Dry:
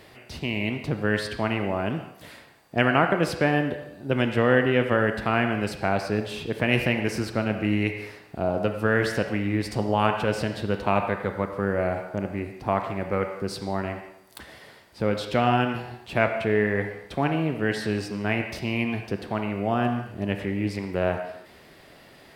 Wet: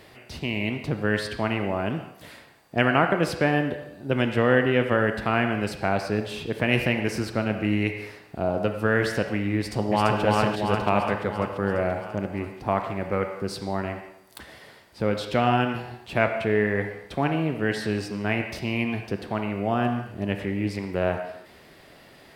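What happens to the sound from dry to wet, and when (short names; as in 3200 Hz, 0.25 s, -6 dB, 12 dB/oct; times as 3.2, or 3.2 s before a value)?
9.57–10.21 echo throw 0.34 s, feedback 65%, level -1.5 dB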